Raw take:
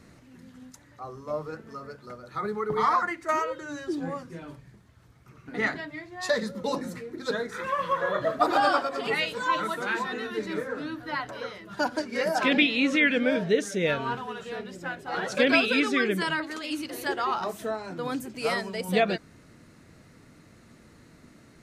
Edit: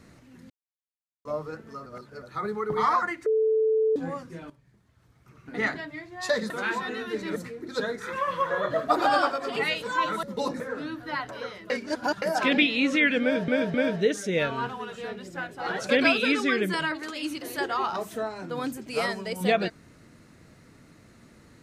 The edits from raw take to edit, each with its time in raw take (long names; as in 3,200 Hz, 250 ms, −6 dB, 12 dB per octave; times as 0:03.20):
0:00.50–0:01.25: silence
0:01.86–0:02.22: reverse
0:03.26–0:03.96: beep over 439 Hz −19.5 dBFS
0:04.50–0:05.56: fade in linear, from −15 dB
0:06.50–0:06.87: swap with 0:09.74–0:10.60
0:11.70–0:12.22: reverse
0:13.22–0:13.48: repeat, 3 plays